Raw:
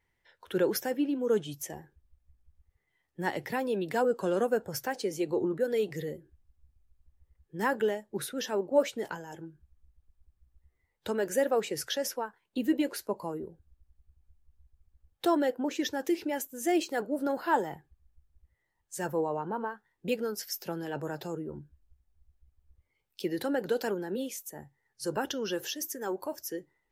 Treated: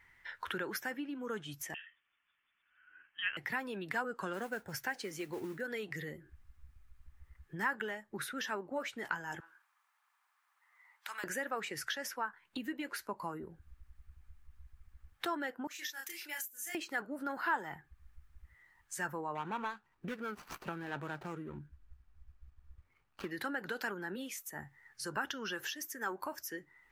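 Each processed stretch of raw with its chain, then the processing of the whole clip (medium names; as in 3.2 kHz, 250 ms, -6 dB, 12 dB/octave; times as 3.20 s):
1.74–3.37 s: high-pass 550 Hz + frequency inversion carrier 3.5 kHz
4.33–5.61 s: peaking EQ 1.2 kHz -12 dB 0.28 oct + modulation noise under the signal 25 dB
9.40–11.24 s: ladder high-pass 790 Hz, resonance 50% + spectrum-flattening compressor 2:1
15.67–16.75 s: differentiator + doubling 30 ms -2.5 dB
19.35–23.31 s: median filter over 25 samples + band-stop 2.1 kHz, Q 16
whole clip: graphic EQ 500/1000/2000 Hz -8/-4/+6 dB; compression 3:1, threshold -52 dBFS; peaking EQ 1.2 kHz +12.5 dB 1.3 oct; trim +6.5 dB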